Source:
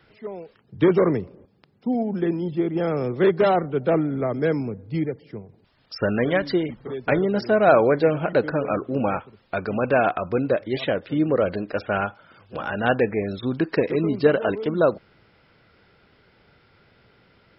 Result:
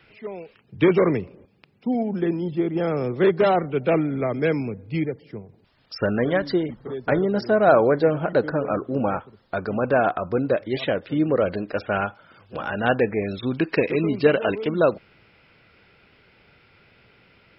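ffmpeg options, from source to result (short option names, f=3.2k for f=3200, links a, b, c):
-af "asetnsamples=n=441:p=0,asendcmd='2.08 equalizer g 2;3.6 equalizer g 10.5;5.05 equalizer g 1.5;6.06 equalizer g -7.5;10.5 equalizer g 0.5;13.22 equalizer g 9',equalizer=f=2.5k:t=o:w=0.5:g=10.5"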